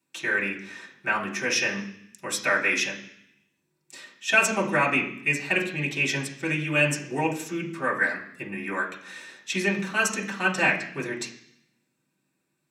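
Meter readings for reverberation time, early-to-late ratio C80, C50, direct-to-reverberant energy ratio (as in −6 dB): 0.65 s, 12.5 dB, 8.5 dB, −5.5 dB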